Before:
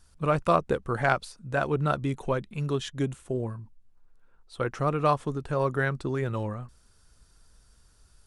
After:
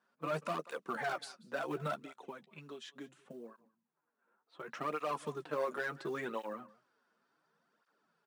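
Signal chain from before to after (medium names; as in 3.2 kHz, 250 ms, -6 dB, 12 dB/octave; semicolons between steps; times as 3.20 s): level-controlled noise filter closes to 1.6 kHz, open at -20.5 dBFS; 1.94–4.68 s: compression 6:1, threshold -37 dBFS, peak gain reduction 14.5 dB; tilt EQ +3 dB/octave; doubling 13 ms -11 dB; hard clipper -23 dBFS, distortion -8 dB; steep high-pass 170 Hz 36 dB/octave; delay 187 ms -22.5 dB; peak limiter -22.5 dBFS, peak gain reduction 6.5 dB; treble shelf 2.4 kHz -8 dB; short-mantissa float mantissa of 4-bit; cancelling through-zero flanger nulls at 0.7 Hz, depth 7.4 ms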